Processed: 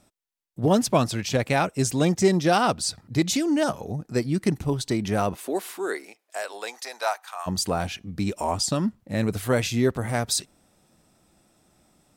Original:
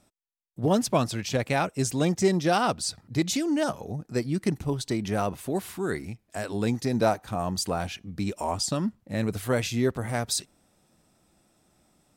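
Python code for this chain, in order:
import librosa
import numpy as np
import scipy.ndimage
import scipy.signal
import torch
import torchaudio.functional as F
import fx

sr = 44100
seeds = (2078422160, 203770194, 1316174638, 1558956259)

y = fx.highpass(x, sr, hz=fx.line((5.34, 250.0), (7.46, 990.0)), slope=24, at=(5.34, 7.46), fade=0.02)
y = y * librosa.db_to_amplitude(3.0)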